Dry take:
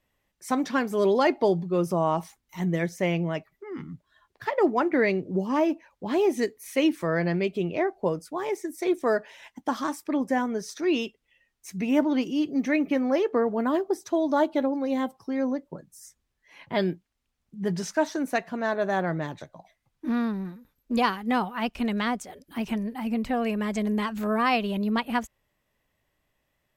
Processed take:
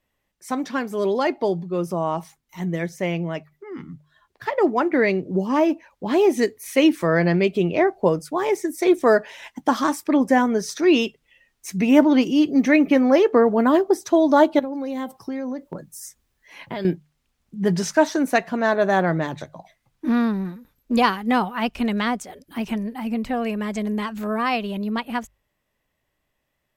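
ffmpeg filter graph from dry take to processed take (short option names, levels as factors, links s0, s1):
-filter_complex "[0:a]asettb=1/sr,asplit=3[s0][s1][s2];[s0]atrim=end=14.594[s3];[s1]atrim=start=14.59:end=16.85,asetpts=PTS-STARTPTS,afade=t=in:d=0.004:c=qsin,afade=t=out:st=2.256:d=0.004:c=qsin,highshelf=f=11000:g=7.5,acompressor=threshold=0.0251:ratio=12:attack=3.2:release=140:knee=1:detection=peak[s4];[s2]atrim=start=16.846[s5];[s3][s4]acrossfade=d=0.004:c1=hsin:c2=qsin[s6];[s6][s5]acrossfade=d=0.004:c1=qsin:c2=hsin,bandreject=f=50:t=h:w=6,bandreject=f=100:t=h:w=6,bandreject=f=150:t=h:w=6,dynaudnorm=f=540:g=21:m=2.99"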